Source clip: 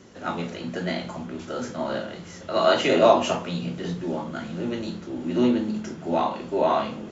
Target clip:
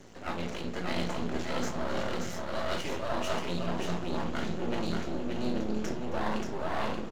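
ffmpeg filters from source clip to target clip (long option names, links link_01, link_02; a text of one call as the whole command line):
ffmpeg -i in.wav -af "dynaudnorm=framelen=100:gausssize=17:maxgain=11.5dB,aeval=exprs='max(val(0),0)':channel_layout=same,areverse,acompressor=threshold=-29dB:ratio=12,areverse,aecho=1:1:268|580:0.133|0.631,volume=1dB" out.wav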